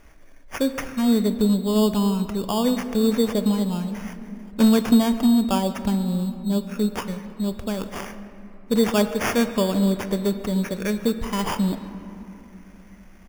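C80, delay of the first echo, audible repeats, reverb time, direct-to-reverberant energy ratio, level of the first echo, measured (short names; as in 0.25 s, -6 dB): 11.0 dB, 0.143 s, 1, 2.9 s, 9.0 dB, -22.0 dB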